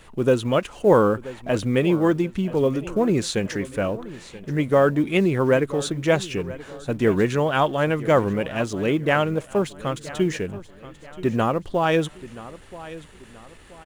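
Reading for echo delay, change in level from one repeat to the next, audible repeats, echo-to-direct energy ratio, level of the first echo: 979 ms, -8.0 dB, 3, -16.5 dB, -17.0 dB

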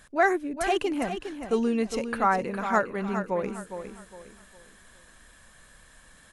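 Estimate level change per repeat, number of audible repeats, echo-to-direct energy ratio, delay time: -9.5 dB, 3, -8.5 dB, 409 ms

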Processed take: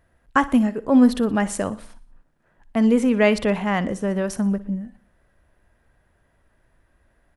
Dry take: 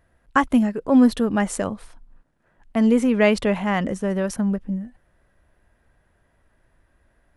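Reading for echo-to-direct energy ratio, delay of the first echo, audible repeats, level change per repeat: -16.5 dB, 60 ms, 3, -6.5 dB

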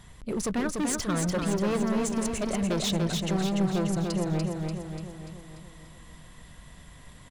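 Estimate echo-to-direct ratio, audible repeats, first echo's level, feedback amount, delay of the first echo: -2.5 dB, 6, -4.0 dB, 55%, 292 ms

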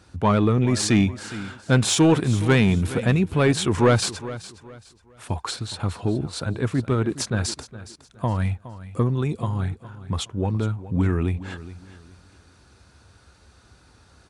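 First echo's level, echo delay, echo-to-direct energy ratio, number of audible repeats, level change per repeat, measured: -15.5 dB, 415 ms, -15.0 dB, 2, -11.0 dB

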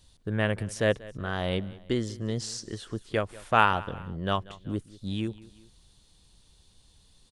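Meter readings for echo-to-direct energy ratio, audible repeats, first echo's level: -19.0 dB, 2, -20.0 dB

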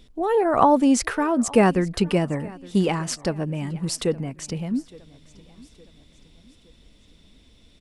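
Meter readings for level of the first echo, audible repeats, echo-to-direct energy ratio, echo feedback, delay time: -22.5 dB, 2, -21.5 dB, 46%, 865 ms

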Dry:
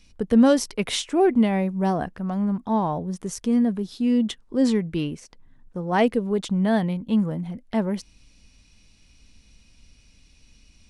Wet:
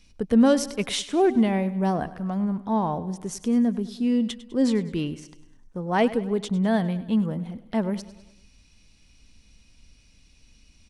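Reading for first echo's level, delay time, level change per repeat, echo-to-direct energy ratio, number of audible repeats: -16.5 dB, 101 ms, -5.5 dB, -15.0 dB, 4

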